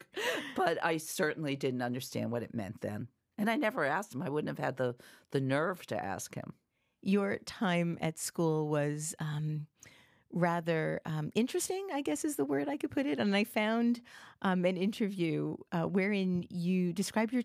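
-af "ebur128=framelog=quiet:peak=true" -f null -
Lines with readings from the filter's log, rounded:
Integrated loudness:
  I:         -33.7 LUFS
  Threshold: -43.9 LUFS
Loudness range:
  LRA:         2.9 LU
  Threshold: -54.1 LUFS
  LRA low:   -35.4 LUFS
  LRA high:  -32.5 LUFS
True peak:
  Peak:      -16.1 dBFS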